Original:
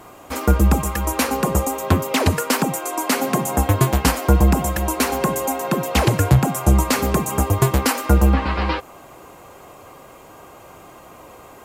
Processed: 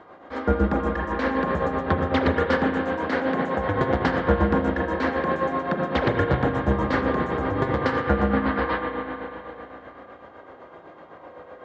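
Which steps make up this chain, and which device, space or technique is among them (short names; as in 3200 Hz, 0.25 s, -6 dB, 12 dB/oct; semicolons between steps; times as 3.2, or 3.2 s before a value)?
combo amplifier with spring reverb and tremolo (spring tank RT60 3.4 s, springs 34/38 ms, chirp 45 ms, DRR 0 dB; tremolo 7.9 Hz, depth 51%; speaker cabinet 81–3600 Hz, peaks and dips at 130 Hz -9 dB, 520 Hz +6 dB, 1700 Hz +7 dB, 2600 Hz -10 dB); gain -4 dB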